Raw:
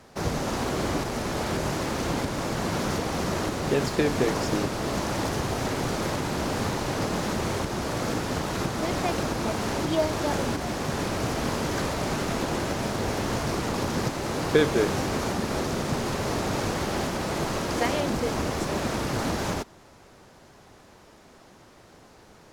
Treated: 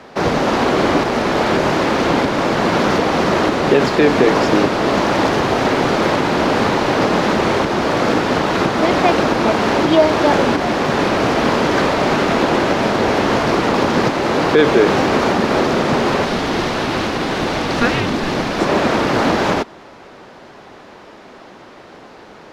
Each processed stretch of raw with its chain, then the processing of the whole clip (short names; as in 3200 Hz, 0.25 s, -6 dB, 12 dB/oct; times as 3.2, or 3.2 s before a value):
16.25–18.59 HPF 310 Hz 6 dB/oct + frequency shift -470 Hz
whole clip: three-band isolator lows -12 dB, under 190 Hz, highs -17 dB, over 4500 Hz; maximiser +15 dB; gain -1 dB